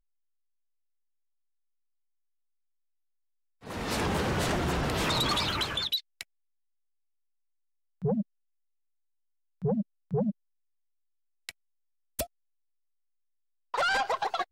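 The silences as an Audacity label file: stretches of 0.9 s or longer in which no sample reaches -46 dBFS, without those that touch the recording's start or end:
6.230000	8.020000	silence
8.220000	9.620000	silence
10.310000	11.490000	silence
12.260000	13.740000	silence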